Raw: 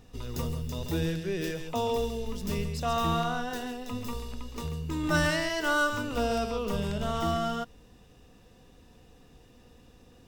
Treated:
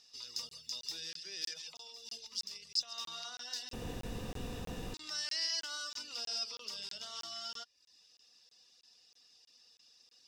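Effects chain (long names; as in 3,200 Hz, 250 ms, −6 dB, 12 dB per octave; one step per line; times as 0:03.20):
reverb reduction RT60 0.6 s
brickwall limiter −24.5 dBFS, peak gain reduction 10 dB
0:01.52–0:02.98: compressor whose output falls as the input rises −38 dBFS, ratio −1
resonant band-pass 5,000 Hz, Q 6
0:03.73–0:04.94: fill with room tone
regular buffer underruns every 0.32 s, samples 1,024, zero, from 0:00.49
level +14 dB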